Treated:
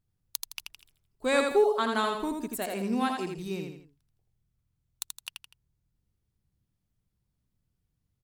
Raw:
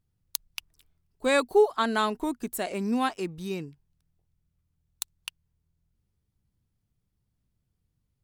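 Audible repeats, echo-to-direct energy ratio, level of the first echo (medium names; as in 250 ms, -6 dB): 3, -4.0 dB, -4.5 dB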